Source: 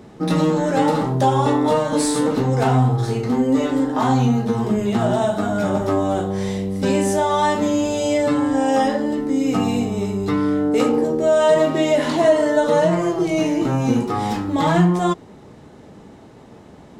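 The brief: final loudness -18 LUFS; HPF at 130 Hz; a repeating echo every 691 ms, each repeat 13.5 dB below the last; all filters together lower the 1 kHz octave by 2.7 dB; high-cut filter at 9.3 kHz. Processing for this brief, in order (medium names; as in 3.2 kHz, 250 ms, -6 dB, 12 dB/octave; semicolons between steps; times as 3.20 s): high-pass 130 Hz; low-pass 9.3 kHz; peaking EQ 1 kHz -3.5 dB; feedback delay 691 ms, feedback 21%, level -13.5 dB; trim +2 dB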